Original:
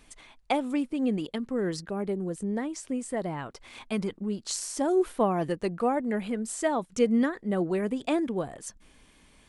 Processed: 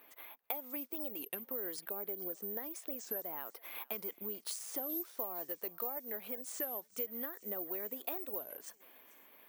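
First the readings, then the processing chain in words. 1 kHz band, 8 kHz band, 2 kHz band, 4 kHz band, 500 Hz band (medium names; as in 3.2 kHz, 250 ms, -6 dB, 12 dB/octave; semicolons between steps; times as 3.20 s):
-16.0 dB, -9.5 dB, -12.5 dB, -11.0 dB, -15.5 dB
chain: level-controlled noise filter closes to 2.3 kHz, open at -23.5 dBFS; Chebyshev high-pass 480 Hz, order 2; compression 6:1, threshold -43 dBFS, peak gain reduction 21 dB; thinning echo 441 ms, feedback 74%, high-pass 1.1 kHz, level -20 dB; careless resampling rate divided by 3×, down none, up zero stuff; warped record 33 1/3 rpm, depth 250 cents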